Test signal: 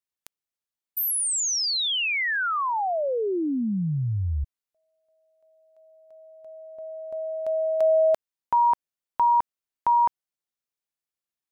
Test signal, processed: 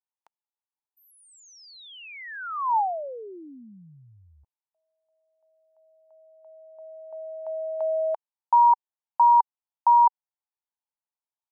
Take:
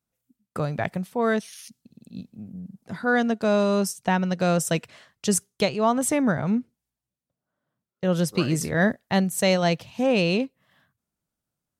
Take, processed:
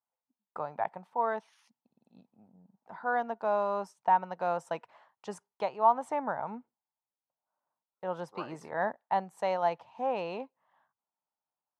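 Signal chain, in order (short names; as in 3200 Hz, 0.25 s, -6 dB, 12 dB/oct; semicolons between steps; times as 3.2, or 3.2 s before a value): band-pass 890 Hz, Q 5.1; gain +5 dB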